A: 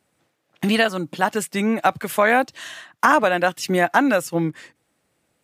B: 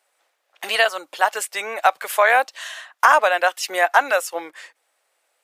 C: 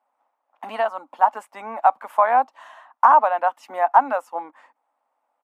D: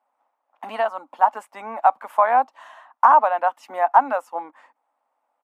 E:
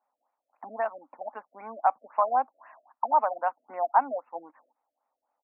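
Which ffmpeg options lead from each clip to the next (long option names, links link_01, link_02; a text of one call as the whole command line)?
ffmpeg -i in.wav -af "highpass=frequency=560:width=0.5412,highpass=frequency=560:width=1.3066,volume=2.5dB" out.wav
ffmpeg -i in.wav -af "firequalizer=gain_entry='entry(160,0);entry(250,14);entry(360,-9);entry(890,9);entry(1600,-10);entry(4100,-22)':delay=0.05:min_phase=1,volume=-3dB" out.wav
ffmpeg -i in.wav -af anull out.wav
ffmpeg -i in.wav -af "afftfilt=real='re*lt(b*sr/1024,660*pow(2900/660,0.5+0.5*sin(2*PI*3.8*pts/sr)))':imag='im*lt(b*sr/1024,660*pow(2900/660,0.5+0.5*sin(2*PI*3.8*pts/sr)))':win_size=1024:overlap=0.75,volume=-7dB" out.wav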